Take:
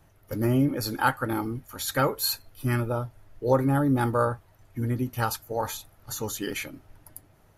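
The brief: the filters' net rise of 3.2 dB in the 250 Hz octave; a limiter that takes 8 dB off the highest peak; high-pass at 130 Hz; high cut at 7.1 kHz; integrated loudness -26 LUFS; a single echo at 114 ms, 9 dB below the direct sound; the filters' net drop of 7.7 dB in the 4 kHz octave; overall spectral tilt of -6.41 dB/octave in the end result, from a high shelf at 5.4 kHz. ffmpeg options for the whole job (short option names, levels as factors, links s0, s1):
-af "highpass=130,lowpass=7100,equalizer=f=250:t=o:g=4,equalizer=f=4000:t=o:g=-6.5,highshelf=f=5400:g=-4.5,alimiter=limit=0.158:level=0:latency=1,aecho=1:1:114:0.355,volume=1.26"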